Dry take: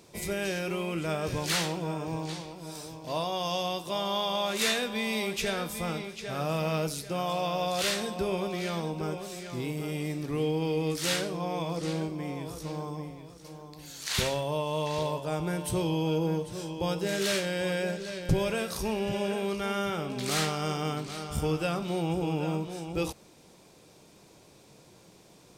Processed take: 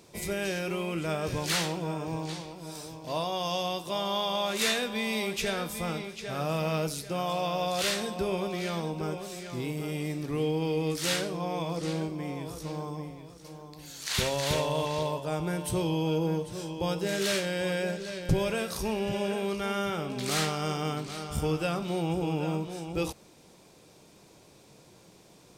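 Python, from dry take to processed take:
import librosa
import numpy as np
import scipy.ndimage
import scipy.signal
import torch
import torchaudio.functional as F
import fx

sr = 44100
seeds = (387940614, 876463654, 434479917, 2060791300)

y = fx.echo_throw(x, sr, start_s=13.91, length_s=0.62, ms=320, feedback_pct=15, wet_db=-3.0)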